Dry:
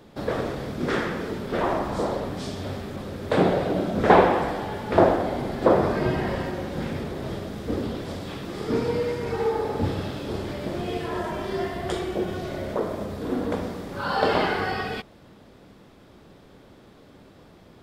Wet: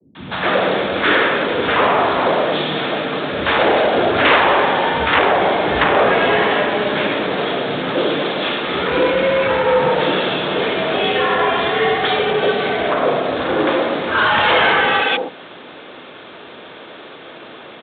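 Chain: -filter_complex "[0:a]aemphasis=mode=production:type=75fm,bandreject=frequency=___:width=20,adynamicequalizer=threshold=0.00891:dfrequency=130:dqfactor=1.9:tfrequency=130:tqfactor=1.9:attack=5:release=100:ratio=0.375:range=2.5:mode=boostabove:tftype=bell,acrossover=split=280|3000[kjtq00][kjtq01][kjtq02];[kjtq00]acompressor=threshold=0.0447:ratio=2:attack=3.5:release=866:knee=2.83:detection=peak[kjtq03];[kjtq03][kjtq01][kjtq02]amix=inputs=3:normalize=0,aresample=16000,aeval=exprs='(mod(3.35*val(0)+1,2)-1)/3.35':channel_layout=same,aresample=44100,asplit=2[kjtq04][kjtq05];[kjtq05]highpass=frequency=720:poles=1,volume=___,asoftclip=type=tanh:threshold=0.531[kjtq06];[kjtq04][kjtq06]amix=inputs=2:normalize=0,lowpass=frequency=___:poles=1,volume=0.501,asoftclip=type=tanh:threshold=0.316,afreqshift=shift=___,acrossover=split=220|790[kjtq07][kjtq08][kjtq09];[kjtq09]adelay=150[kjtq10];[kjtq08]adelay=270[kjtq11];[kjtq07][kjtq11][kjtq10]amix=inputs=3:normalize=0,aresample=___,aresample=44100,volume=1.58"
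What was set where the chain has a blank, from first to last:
1900, 15.8, 3000, 56, 8000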